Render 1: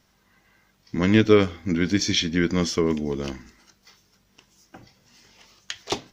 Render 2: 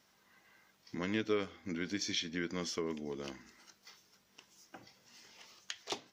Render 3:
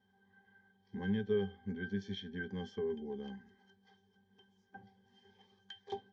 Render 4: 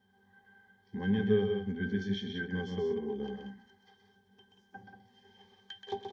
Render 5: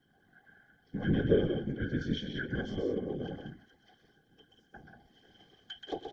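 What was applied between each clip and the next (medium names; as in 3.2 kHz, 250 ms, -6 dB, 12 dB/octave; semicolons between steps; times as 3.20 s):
high-pass 340 Hz 6 dB/octave; compression 1.5:1, threshold -46 dBFS, peak gain reduction 12 dB; trim -3.5 dB
pitch-class resonator G, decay 0.12 s; trim +9 dB
loudspeakers at several distances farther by 44 m -6 dB, 63 m -7 dB; trim +4 dB
whisper effect; Butterworth band-stop 930 Hz, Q 4.3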